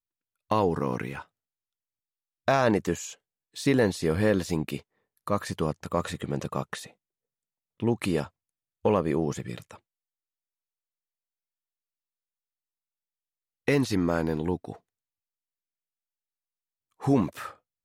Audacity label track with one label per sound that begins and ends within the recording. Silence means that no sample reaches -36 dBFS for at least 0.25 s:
0.510000	1.220000	sound
2.480000	3.130000	sound
3.560000	4.790000	sound
5.270000	6.870000	sound
7.800000	8.260000	sound
8.850000	9.740000	sound
13.680000	14.720000	sound
17.030000	17.510000	sound